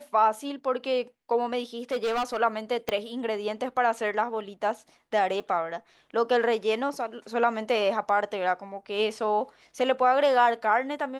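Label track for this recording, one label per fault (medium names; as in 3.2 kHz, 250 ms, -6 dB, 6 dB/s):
1.910000	2.370000	clipped -23.5 dBFS
2.890000	2.890000	pop -13 dBFS
5.400000	5.400000	dropout 3 ms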